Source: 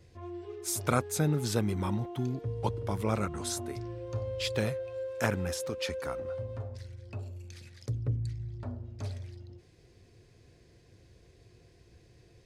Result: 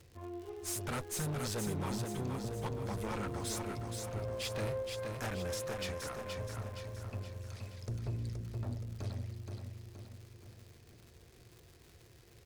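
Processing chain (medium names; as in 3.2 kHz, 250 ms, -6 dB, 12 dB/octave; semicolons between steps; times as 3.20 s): crackle 190 per s -45 dBFS; valve stage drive 34 dB, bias 0.6; feedback delay 473 ms, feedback 51%, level -5 dB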